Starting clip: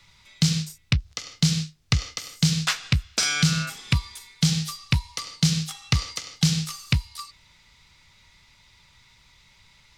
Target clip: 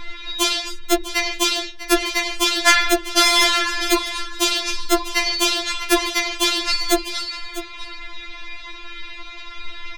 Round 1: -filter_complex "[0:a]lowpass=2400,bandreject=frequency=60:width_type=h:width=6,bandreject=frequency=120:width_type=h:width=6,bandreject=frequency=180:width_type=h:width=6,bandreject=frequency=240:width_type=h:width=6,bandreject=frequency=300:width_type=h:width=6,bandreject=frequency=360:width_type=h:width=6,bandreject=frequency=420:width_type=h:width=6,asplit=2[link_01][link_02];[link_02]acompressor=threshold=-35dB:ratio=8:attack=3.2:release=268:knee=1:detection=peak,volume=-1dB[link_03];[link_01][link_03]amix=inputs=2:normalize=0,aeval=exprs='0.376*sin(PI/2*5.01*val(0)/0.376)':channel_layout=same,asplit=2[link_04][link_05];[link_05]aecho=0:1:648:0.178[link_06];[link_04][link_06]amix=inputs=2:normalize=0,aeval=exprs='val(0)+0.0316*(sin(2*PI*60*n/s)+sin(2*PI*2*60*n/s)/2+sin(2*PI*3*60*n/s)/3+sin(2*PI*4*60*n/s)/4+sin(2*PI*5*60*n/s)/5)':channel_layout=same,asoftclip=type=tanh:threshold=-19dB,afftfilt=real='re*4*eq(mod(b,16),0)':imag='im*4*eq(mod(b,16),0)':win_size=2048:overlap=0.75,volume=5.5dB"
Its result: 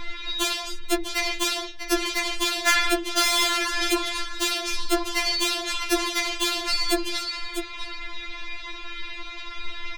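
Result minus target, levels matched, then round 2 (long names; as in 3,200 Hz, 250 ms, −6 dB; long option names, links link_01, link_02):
soft clipping: distortion +12 dB; downward compressor: peak gain reduction +5 dB
-filter_complex "[0:a]lowpass=2400,bandreject=frequency=60:width_type=h:width=6,bandreject=frequency=120:width_type=h:width=6,bandreject=frequency=180:width_type=h:width=6,bandreject=frequency=240:width_type=h:width=6,bandreject=frequency=300:width_type=h:width=6,bandreject=frequency=360:width_type=h:width=6,bandreject=frequency=420:width_type=h:width=6,asplit=2[link_01][link_02];[link_02]acompressor=threshold=-29dB:ratio=8:attack=3.2:release=268:knee=1:detection=peak,volume=-1dB[link_03];[link_01][link_03]amix=inputs=2:normalize=0,aeval=exprs='0.376*sin(PI/2*5.01*val(0)/0.376)':channel_layout=same,asplit=2[link_04][link_05];[link_05]aecho=0:1:648:0.178[link_06];[link_04][link_06]amix=inputs=2:normalize=0,aeval=exprs='val(0)+0.0316*(sin(2*PI*60*n/s)+sin(2*PI*2*60*n/s)/2+sin(2*PI*3*60*n/s)/3+sin(2*PI*4*60*n/s)/4+sin(2*PI*5*60*n/s)/5)':channel_layout=same,asoftclip=type=tanh:threshold=-9dB,afftfilt=real='re*4*eq(mod(b,16),0)':imag='im*4*eq(mod(b,16),0)':win_size=2048:overlap=0.75,volume=5.5dB"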